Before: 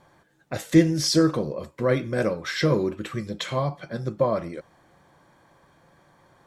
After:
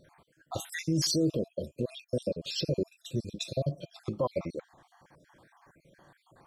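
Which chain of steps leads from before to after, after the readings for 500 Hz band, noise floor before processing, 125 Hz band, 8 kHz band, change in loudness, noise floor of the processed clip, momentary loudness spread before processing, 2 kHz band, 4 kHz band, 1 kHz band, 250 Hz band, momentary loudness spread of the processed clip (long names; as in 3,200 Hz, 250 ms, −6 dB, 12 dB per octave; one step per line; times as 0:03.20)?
−8.5 dB, −62 dBFS, −7.0 dB, −4.0 dB, −8.5 dB, −72 dBFS, 13 LU, −12.5 dB, −4.5 dB, −11.5 dB, −9.5 dB, 13 LU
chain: time-frequency cells dropped at random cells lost 53%
brickwall limiter −19.5 dBFS, peak gain reduction 10.5 dB
gain on a spectral selection 0:01.10–0:03.97, 700–2,400 Hz −29 dB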